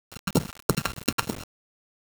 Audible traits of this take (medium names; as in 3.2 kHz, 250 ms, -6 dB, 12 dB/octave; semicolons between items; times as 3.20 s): a buzz of ramps at a fixed pitch in blocks of 32 samples; phasing stages 2, 3.2 Hz, lowest notch 230–2100 Hz; a quantiser's noise floor 6-bit, dither none